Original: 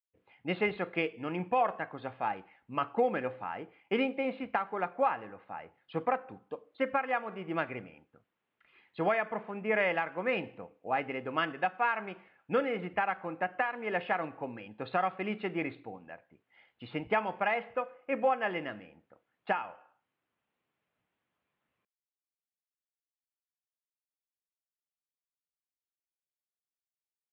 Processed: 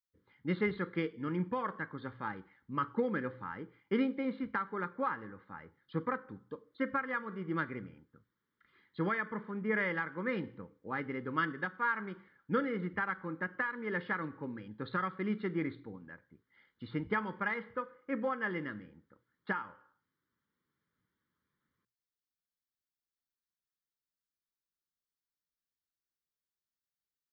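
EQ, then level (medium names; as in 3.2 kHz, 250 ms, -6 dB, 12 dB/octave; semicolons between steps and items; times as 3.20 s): bass shelf 380 Hz +5 dB; hum notches 60/120 Hz; static phaser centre 2.6 kHz, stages 6; 0.0 dB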